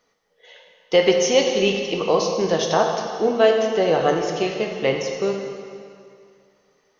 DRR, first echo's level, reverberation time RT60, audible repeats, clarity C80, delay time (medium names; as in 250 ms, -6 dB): 2.0 dB, no echo, 2.3 s, no echo, 5.0 dB, no echo